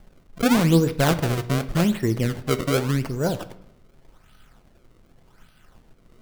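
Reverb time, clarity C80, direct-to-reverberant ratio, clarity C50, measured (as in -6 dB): 0.75 s, 18.0 dB, 11.0 dB, 15.0 dB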